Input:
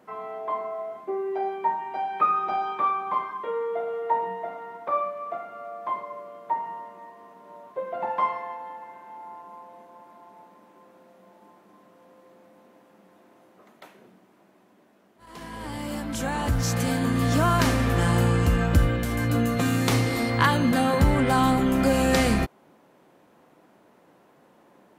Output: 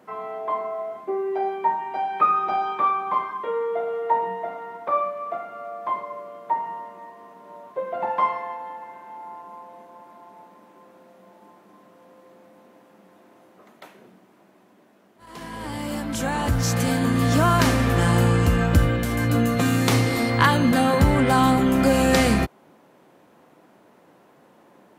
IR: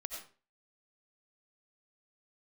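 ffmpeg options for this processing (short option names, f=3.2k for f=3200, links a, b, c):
-af "highpass=53,volume=3dB"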